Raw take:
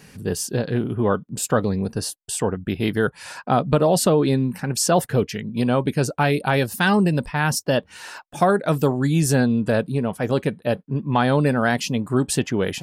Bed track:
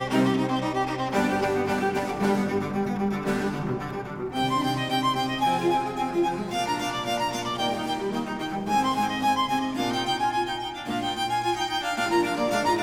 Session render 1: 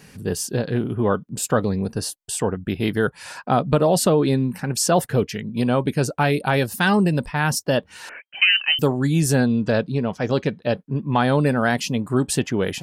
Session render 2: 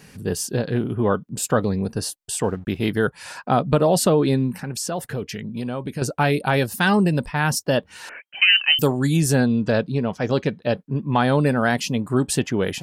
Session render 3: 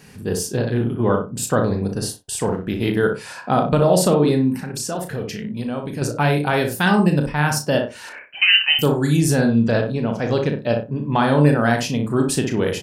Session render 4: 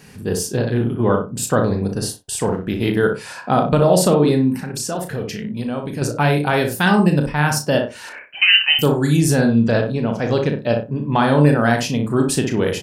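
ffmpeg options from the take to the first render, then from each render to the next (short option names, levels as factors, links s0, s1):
-filter_complex "[0:a]asettb=1/sr,asplit=3[s0][s1][s2];[s0]atrim=end=8.094[s3];[s1]atrim=start=8.09:end=8.79,asetpts=PTS-STARTPTS,afade=t=in:d=0.004:c=qsin,afade=t=out:st=0.696:d=0.004:c=qsin,lowpass=f=2700:t=q:w=0.5098,lowpass=f=2700:t=q:w=0.6013,lowpass=f=2700:t=q:w=0.9,lowpass=f=2700:t=q:w=2.563,afreqshift=-3200[s4];[s2]atrim=start=8.786[s5];[s3][s4]acrossfade=d=0.004:c1=hsin:c2=qsin[s6];[s6][s5]acrossfade=d=0.004:c1=qsin:c2=hsin,asettb=1/sr,asplit=3[s7][s8][s9];[s7]atrim=end=9.474[s10];[s8]atrim=start=9.47:end=10.77,asetpts=PTS-STARTPTS,afade=t=in:d=0.004:c=qsin,afade=t=out:st=1.296:d=0.004:c=qsin,highshelf=f=7700:t=q:w=3:g=-11.5[s11];[s9]atrim=start=10.766[s12];[s10][s11]acrossfade=d=0.004:c1=hsin:c2=qsin[s13];[s13][s12]acrossfade=d=0.004:c1=qsin:c2=hsin"
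-filter_complex "[0:a]asettb=1/sr,asplit=3[s0][s1][s2];[s0]atrim=end=2.434[s3];[s1]atrim=start=2.43:end=2.87,asetpts=PTS-STARTPTS,afade=t=in:d=0.004:c=qsin,afade=t=out:st=0.436:d=0.004:c=qsin,aeval=exprs='sgn(val(0))*max(abs(val(0))-0.00282,0)':c=same[s4];[s2]atrim=start=2.866[s5];[s3][s4]acrossfade=d=0.004:c1=hsin:c2=qsin[s6];[s6][s5]acrossfade=d=0.004:c1=qsin:c2=hsin,asettb=1/sr,asplit=3[s7][s8][s9];[s7]atrim=end=4.554[s10];[s8]atrim=start=4.55:end=6.02,asetpts=PTS-STARTPTS,afade=t=in:d=0.004:c=qsin,afade=t=out:st=1.466:d=0.004:c=qsin,acompressor=threshold=0.0447:ratio=2.5:attack=3.2:release=140:knee=1:detection=peak[s11];[s9]atrim=start=6.016[s12];[s10][s11]acrossfade=d=0.004:c1=hsin:c2=qsin[s13];[s13][s12]acrossfade=d=0.004:c1=qsin:c2=hsin,asettb=1/sr,asplit=3[s14][s15][s16];[s14]atrim=end=8.484[s17];[s15]atrim=start=8.48:end=9.17,asetpts=PTS-STARTPTS,afade=t=in:d=0.004:c=qsin,afade=t=out:st=0.686:d=0.004:c=qsin,highshelf=f=4900:g=10[s18];[s16]atrim=start=9.166[s19];[s17][s18]acrossfade=d=0.004:c1=hsin:c2=qsin[s20];[s20][s19]acrossfade=d=0.004:c1=qsin:c2=hsin"
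-filter_complex "[0:a]asplit=2[s0][s1];[s1]adelay=34,volume=0.398[s2];[s0][s2]amix=inputs=2:normalize=0,asplit=2[s3][s4];[s4]adelay=61,lowpass=f=1200:p=1,volume=0.668,asplit=2[s5][s6];[s6]adelay=61,lowpass=f=1200:p=1,volume=0.23,asplit=2[s7][s8];[s8]adelay=61,lowpass=f=1200:p=1,volume=0.23[s9];[s3][s5][s7][s9]amix=inputs=4:normalize=0"
-af "volume=1.19,alimiter=limit=0.794:level=0:latency=1"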